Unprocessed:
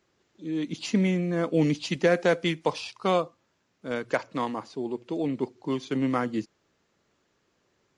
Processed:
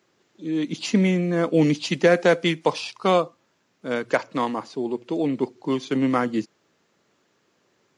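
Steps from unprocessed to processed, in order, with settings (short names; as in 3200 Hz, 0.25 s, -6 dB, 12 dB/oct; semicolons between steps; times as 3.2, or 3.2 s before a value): HPF 130 Hz 12 dB/oct; gain +5 dB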